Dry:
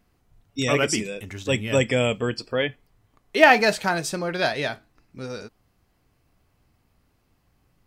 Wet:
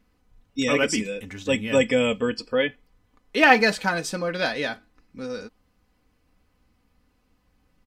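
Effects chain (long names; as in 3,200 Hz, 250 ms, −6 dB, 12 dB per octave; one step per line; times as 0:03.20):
high-shelf EQ 8,300 Hz −7 dB
notch filter 720 Hz, Q 12
comb filter 4 ms, depth 60%
level −1 dB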